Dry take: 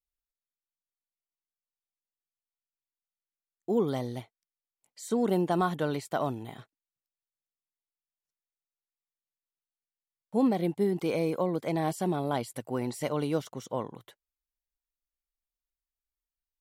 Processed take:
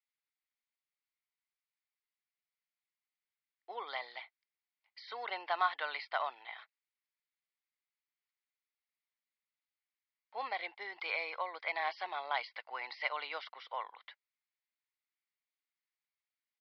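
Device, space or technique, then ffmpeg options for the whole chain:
musical greeting card: -af "aresample=11025,aresample=44100,highpass=f=830:w=0.5412,highpass=f=830:w=1.3066,equalizer=f=2.1k:t=o:w=0.43:g=10"

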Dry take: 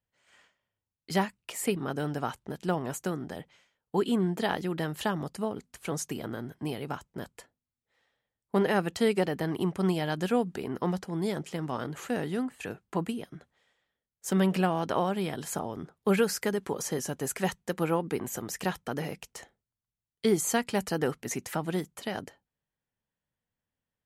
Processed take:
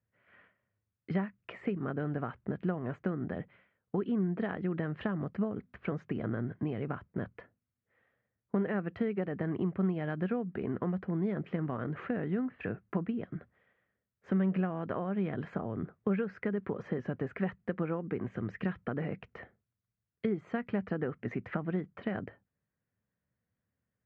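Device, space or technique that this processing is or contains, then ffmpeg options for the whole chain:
bass amplifier: -filter_complex "[0:a]asettb=1/sr,asplit=3[a][b][c];[a]atrim=end=18.314[d];[b]atrim=start=18.31:end=18.79,asetpts=PTS-STARTPTS,afade=t=in:d=0.004:c=qsin,afade=t=out:st=0.476:d=0.004:c=qsin,equalizer=f=740:t=o:w=1.6:g=-6.5[e];[c]atrim=start=18.786[f];[d][e]acrossfade=d=0.004:c1=hsin:c2=qsin[g];[g][f]acrossfade=d=0.004:c1=qsin:c2=hsin,acompressor=threshold=-34dB:ratio=5,highpass=64,equalizer=f=72:t=q:w=4:g=5,equalizer=f=110:t=q:w=4:g=7,equalizer=f=200:t=q:w=4:g=5,equalizer=f=870:t=q:w=4:g=-9,lowpass=f=2.1k:w=0.5412,lowpass=f=2.1k:w=1.3066,volume=3dB"

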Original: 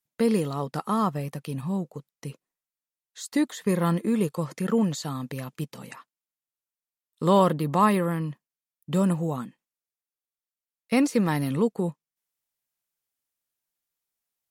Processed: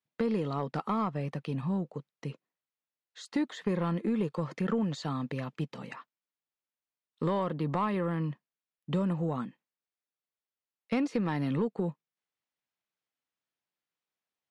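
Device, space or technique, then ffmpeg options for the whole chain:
AM radio: -af "highpass=110,lowpass=3.6k,acompressor=threshold=-25dB:ratio=5,asoftclip=type=tanh:threshold=-19dB"

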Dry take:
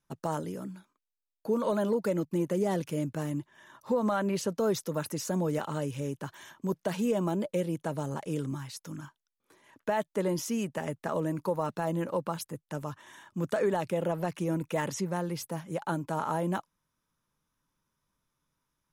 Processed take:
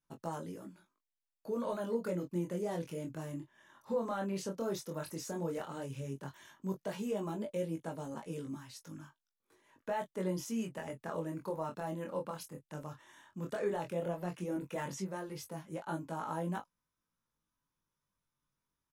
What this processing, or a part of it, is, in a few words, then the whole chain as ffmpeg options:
double-tracked vocal: -filter_complex "[0:a]asplit=2[a][b];[b]adelay=22,volume=-10dB[c];[a][c]amix=inputs=2:normalize=0,flanger=delay=18:depth=7.9:speed=0.12,volume=-5dB"

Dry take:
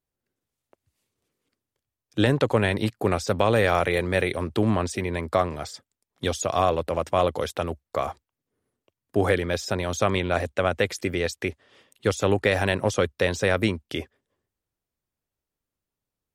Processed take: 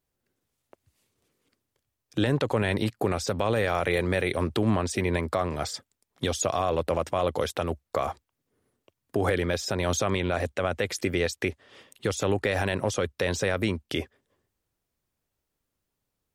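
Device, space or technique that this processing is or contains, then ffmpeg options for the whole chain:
stacked limiters: -af "alimiter=limit=-13dB:level=0:latency=1:release=61,alimiter=limit=-19.5dB:level=0:latency=1:release=349,volume=5dB"

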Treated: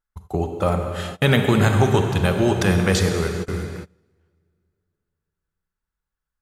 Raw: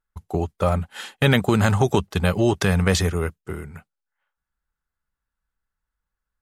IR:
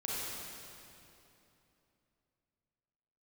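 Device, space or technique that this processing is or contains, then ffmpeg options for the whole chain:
keyed gated reverb: -filter_complex "[0:a]asplit=3[a][b][c];[1:a]atrim=start_sample=2205[d];[b][d]afir=irnorm=-1:irlink=0[e];[c]apad=whole_len=282880[f];[e][f]sidechaingate=range=-26dB:threshold=-43dB:ratio=16:detection=peak,volume=-4.5dB[g];[a][g]amix=inputs=2:normalize=0,volume=-3dB"

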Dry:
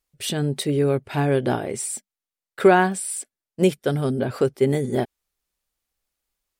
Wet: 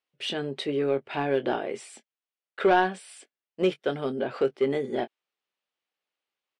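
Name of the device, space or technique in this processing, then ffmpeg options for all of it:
intercom: -filter_complex "[0:a]highpass=310,lowpass=3.5k,equalizer=f=2.9k:t=o:w=0.56:g=4.5,asoftclip=type=tanh:threshold=-10.5dB,asplit=2[a][b];[b]adelay=22,volume=-11.5dB[c];[a][c]amix=inputs=2:normalize=0,volume=-2.5dB"

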